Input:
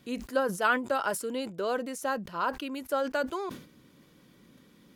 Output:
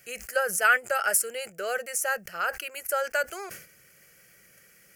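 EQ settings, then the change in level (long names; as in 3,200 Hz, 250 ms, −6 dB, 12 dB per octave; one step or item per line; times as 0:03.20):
tilt shelving filter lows −9.5 dB, about 1,200 Hz
phaser with its sweep stopped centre 1,000 Hz, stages 6
+6.0 dB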